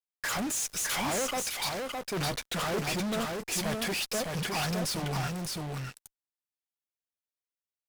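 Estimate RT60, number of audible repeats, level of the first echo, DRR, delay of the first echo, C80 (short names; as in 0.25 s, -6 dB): none, 1, -3.5 dB, none, 0.611 s, none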